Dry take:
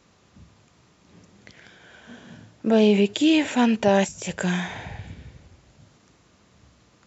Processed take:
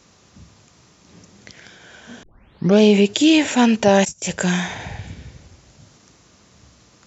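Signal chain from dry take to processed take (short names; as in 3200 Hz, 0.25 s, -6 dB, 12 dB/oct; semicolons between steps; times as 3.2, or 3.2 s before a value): 2.23 tape start 0.56 s; 4.05–4.8 gate -35 dBFS, range -20 dB; bell 5900 Hz +7 dB 0.91 oct; gain +4.5 dB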